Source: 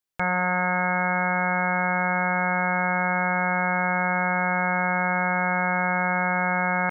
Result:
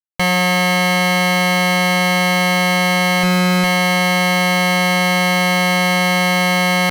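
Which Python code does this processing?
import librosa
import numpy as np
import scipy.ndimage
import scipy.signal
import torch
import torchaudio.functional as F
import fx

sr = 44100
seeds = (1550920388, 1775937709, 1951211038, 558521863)

y = fx.low_shelf(x, sr, hz=360.0, db=6.5, at=(3.23, 3.64))
y = fx.fuzz(y, sr, gain_db=35.0, gate_db=-43.0)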